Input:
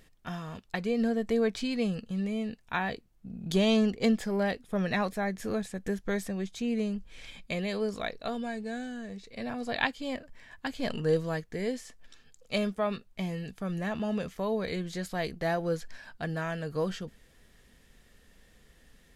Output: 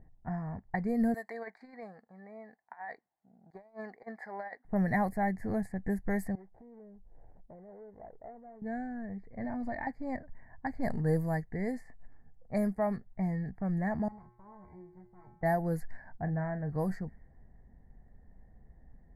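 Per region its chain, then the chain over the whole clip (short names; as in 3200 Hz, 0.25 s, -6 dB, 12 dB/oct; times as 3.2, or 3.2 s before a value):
1.14–4.65 HPF 930 Hz + bell 3800 Hz +11 dB 0.35 oct + negative-ratio compressor -37 dBFS, ratio -0.5
6.35–8.62 median filter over 41 samples + compressor, threshold -43 dBFS + resonant low shelf 320 Hz -8.5 dB, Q 1.5
9.44–9.87 comb 3.3 ms, depth 62% + compressor 10:1, threshold -31 dBFS
14.08–15.43 minimum comb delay 0.85 ms + resonator 120 Hz, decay 0.75 s, harmonics odd, mix 90%
16.18–16.7 tape spacing loss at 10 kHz 26 dB + doubler 39 ms -12 dB
whole clip: elliptic band-stop 2000–4800 Hz, stop band 40 dB; low-pass opened by the level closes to 880 Hz, open at -25.5 dBFS; EQ curve 120 Hz 0 dB, 510 Hz -12 dB, 780 Hz 0 dB, 1300 Hz -17 dB, 1800 Hz -6 dB, 3700 Hz -1 dB, 5400 Hz -24 dB, 13000 Hz +5 dB; gain +5.5 dB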